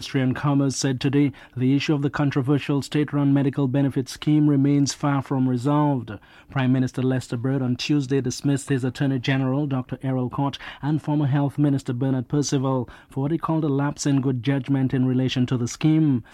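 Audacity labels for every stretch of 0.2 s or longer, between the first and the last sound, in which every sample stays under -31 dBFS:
1.300000	1.570000	silence
6.160000	6.520000	silence
12.880000	13.170000	silence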